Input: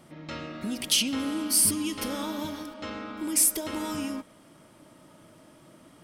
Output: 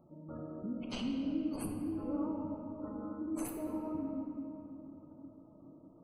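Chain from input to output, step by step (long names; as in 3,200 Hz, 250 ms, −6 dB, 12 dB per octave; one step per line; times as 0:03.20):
running median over 25 samples
gate on every frequency bin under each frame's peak −20 dB strong
high-shelf EQ 8,200 Hz +7 dB
rectangular room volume 140 cubic metres, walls hard, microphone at 0.37 metres
level −7.5 dB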